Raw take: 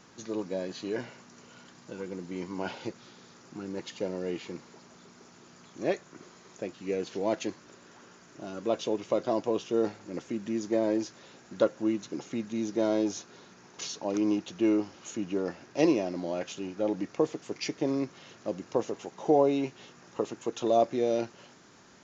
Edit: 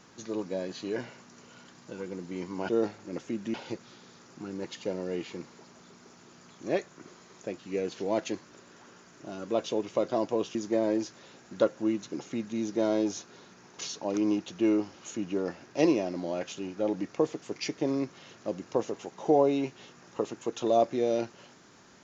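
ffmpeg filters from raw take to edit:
-filter_complex "[0:a]asplit=4[a][b][c][d];[a]atrim=end=2.692[e];[b]atrim=start=9.698:end=10.552[f];[c]atrim=start=2.688:end=9.702[g];[d]atrim=start=10.548[h];[e][f]acrossfade=d=0.004:c1=hsin:c2=hsin[i];[i][g]acrossfade=d=0.004:c1=hsin:c2=hsin[j];[j][h]acrossfade=d=0.004:c1=hsin:c2=hsin"

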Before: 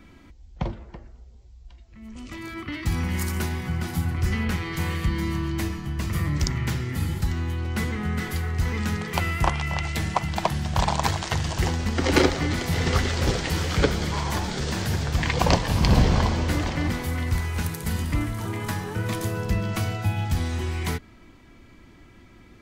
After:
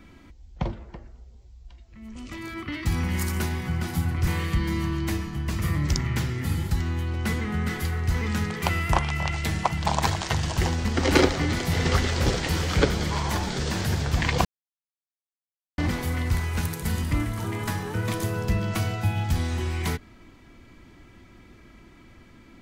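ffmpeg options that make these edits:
-filter_complex "[0:a]asplit=5[a][b][c][d][e];[a]atrim=end=4.272[f];[b]atrim=start=4.778:end=10.372[g];[c]atrim=start=10.868:end=15.46,asetpts=PTS-STARTPTS,afade=t=out:st=4.588:d=0.004:c=hsin[h];[d]atrim=start=15.46:end=16.79,asetpts=PTS-STARTPTS,volume=0[i];[e]atrim=start=16.79,asetpts=PTS-STARTPTS,afade=t=in:d=0.004:c=hsin[j];[f][g]acrossfade=d=0.004:c1=hsin:c2=hsin[k];[h][i][j]concat=n=3:v=0:a=1[l];[k][l]acrossfade=d=0.004:c1=hsin:c2=hsin"

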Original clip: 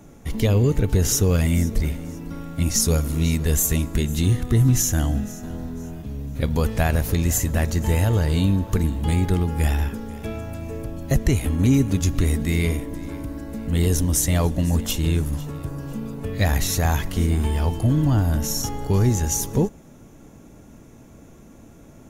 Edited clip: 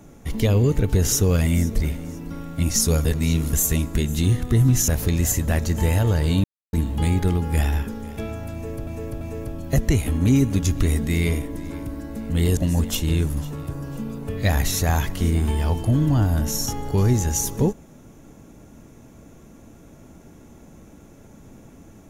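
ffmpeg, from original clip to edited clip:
-filter_complex "[0:a]asplit=9[a][b][c][d][e][f][g][h][i];[a]atrim=end=3.052[j];[b]atrim=start=3.048:end=3.532,asetpts=PTS-STARTPTS,areverse[k];[c]atrim=start=3.528:end=4.882[l];[d]atrim=start=6.938:end=8.5,asetpts=PTS-STARTPTS,afade=t=out:st=1.558:d=0.004:c=hsin[m];[e]atrim=start=8.5:end=8.79,asetpts=PTS-STARTPTS,volume=0[n];[f]atrim=start=8.79:end=10.932,asetpts=PTS-STARTPTS,afade=t=in:d=0.004:c=hsin[o];[g]atrim=start=10.588:end=10.932[p];[h]atrim=start=10.588:end=13.952[q];[i]atrim=start=14.528[r];[j][k]acrossfade=d=0.004:c1=hsin:c2=hsin[s];[s][l]acrossfade=d=0.004:c1=hsin:c2=hsin[t];[m][n][o]concat=n=3:v=0:a=1[u];[t][u]acrossfade=d=0.004:c1=hsin:c2=hsin[v];[v][p]acrossfade=d=0.004:c1=hsin:c2=hsin[w];[w][q]acrossfade=d=0.004:c1=hsin:c2=hsin[x];[x][r]acrossfade=d=0.004:c1=hsin:c2=hsin"

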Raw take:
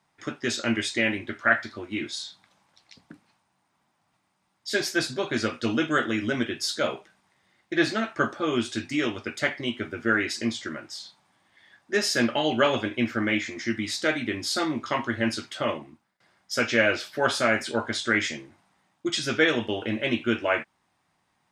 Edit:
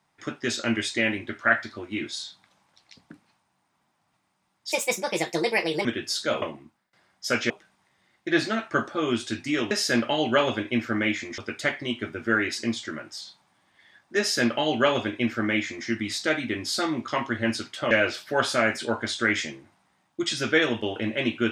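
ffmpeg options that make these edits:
-filter_complex "[0:a]asplit=8[a][b][c][d][e][f][g][h];[a]atrim=end=4.724[i];[b]atrim=start=4.72:end=6.38,asetpts=PTS-STARTPTS,asetrate=64827,aresample=44100[j];[c]atrim=start=6.376:end=6.952[k];[d]atrim=start=15.688:end=16.772[l];[e]atrim=start=6.948:end=9.162[m];[f]atrim=start=11.968:end=13.642[n];[g]atrim=start=9.158:end=15.692[o];[h]atrim=start=16.768[p];[i][j]acrossfade=d=0.004:c1=hsin:c2=hsin[q];[q][k]acrossfade=d=0.004:c1=hsin:c2=hsin[r];[r][l]acrossfade=d=0.004:c1=hsin:c2=hsin[s];[s][m]acrossfade=d=0.004:c1=hsin:c2=hsin[t];[t][n]acrossfade=d=0.004:c1=hsin:c2=hsin[u];[u][o]acrossfade=d=0.004:c1=hsin:c2=hsin[v];[v][p]acrossfade=d=0.004:c1=hsin:c2=hsin"

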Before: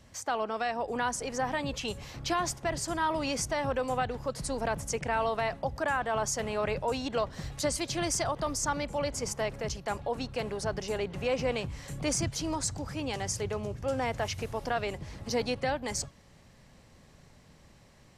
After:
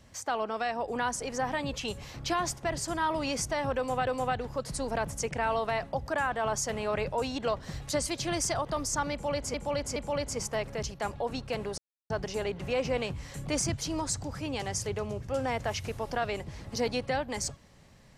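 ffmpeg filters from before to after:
-filter_complex "[0:a]asplit=5[a][b][c][d][e];[a]atrim=end=4.072[f];[b]atrim=start=3.768:end=9.242[g];[c]atrim=start=8.818:end=9.242[h];[d]atrim=start=8.818:end=10.64,asetpts=PTS-STARTPTS,afade=t=out:st=1.818:d=0.004:c=hsin,apad=pad_dur=0.32[i];[e]atrim=start=10.64,asetpts=PTS-STARTPTS,afade=t=in:d=0.004:c=hsin[j];[f][g]acrossfade=d=0.004:c1=hsin:c2=hsin[k];[k][h]acrossfade=d=0.004:c1=hsin:c2=hsin[l];[i][j]concat=n=2:v=0:a=1[m];[l][m]acrossfade=d=0.004:c1=hsin:c2=hsin"

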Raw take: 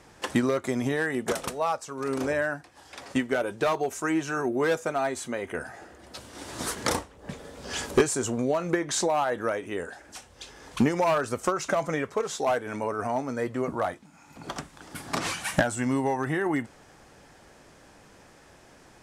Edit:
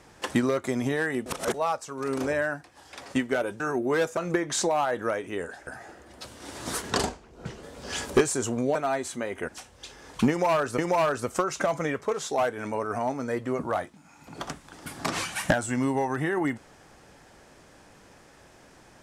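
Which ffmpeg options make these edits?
-filter_complex "[0:a]asplit=11[a][b][c][d][e][f][g][h][i][j][k];[a]atrim=end=1.262[l];[b]atrim=start=1.258:end=1.542,asetpts=PTS-STARTPTS,areverse[m];[c]atrim=start=1.538:end=3.602[n];[d]atrim=start=4.298:end=4.872[o];[e]atrim=start=8.558:end=10.062[p];[f]atrim=start=5.598:end=6.844[q];[g]atrim=start=6.84:end=7.44,asetpts=PTS-STARTPTS,asetrate=36603,aresample=44100[r];[h]atrim=start=7.436:end=8.562[s];[i]atrim=start=4.868:end=5.602[t];[j]atrim=start=10.058:end=11.362[u];[k]atrim=start=10.868[v];[l][m]acrossfade=d=0.004:c1=hsin:c2=hsin[w];[w][n]acrossfade=d=0.004:c1=hsin:c2=hsin[x];[x][o]acrossfade=d=0.004:c1=hsin:c2=hsin[y];[y][p]acrossfade=d=0.004:c1=hsin:c2=hsin[z];[z][q]acrossfade=d=0.004:c1=hsin:c2=hsin[aa];[aa][r]acrossfade=d=0.004:c1=hsin:c2=hsin[ab];[ab][s]acrossfade=d=0.004:c1=hsin:c2=hsin[ac];[ac][t]acrossfade=d=0.004:c1=hsin:c2=hsin[ad];[ad][u]acrossfade=d=0.004:c1=hsin:c2=hsin[ae];[ae][v]acrossfade=d=0.004:c1=hsin:c2=hsin"

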